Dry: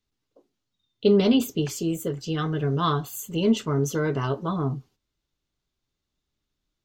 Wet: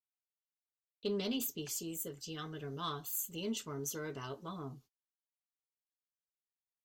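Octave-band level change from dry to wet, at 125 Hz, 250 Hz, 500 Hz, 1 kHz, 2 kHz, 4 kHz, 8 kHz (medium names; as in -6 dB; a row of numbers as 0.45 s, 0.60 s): -20.0 dB, -18.0 dB, -17.0 dB, -15.5 dB, -13.0 dB, -10.0 dB, -4.0 dB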